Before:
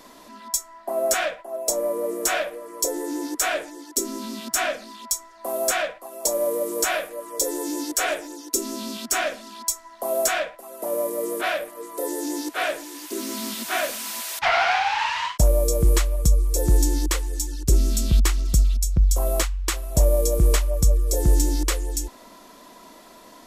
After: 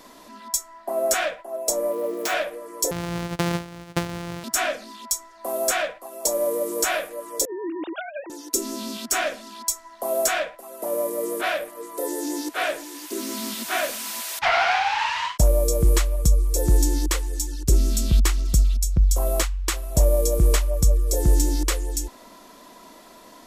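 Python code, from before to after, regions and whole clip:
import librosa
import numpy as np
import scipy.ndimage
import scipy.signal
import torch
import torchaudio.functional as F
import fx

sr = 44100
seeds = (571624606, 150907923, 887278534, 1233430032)

y = fx.chain(x, sr, fx.median_filter(points=5),
    fx.highpass(hz=170.0, slope=12),
    fx.high_shelf(hz=10000.0, db=5.5), at=(1.91, 2.34))
y = fx.chain(y, sr, fx.sample_sort(block=256),
    fx.highpass(hz=48.0, slope=12),
    fx.high_shelf(hz=10000.0, db=-8.5), at=(2.91, 4.44))
y = fx.chain(y, sr, fx.sine_speech(),
    fx.over_compress(threshold_db=-32.0, ratio=-1.0), at=(7.45, 8.3))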